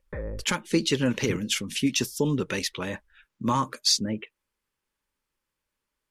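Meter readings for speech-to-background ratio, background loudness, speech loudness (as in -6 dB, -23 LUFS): 12.0 dB, -38.5 LUFS, -26.5 LUFS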